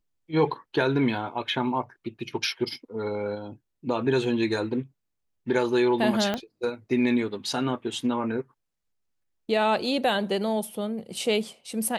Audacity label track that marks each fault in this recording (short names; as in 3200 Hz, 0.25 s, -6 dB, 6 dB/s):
6.340000	6.340000	pop -14 dBFS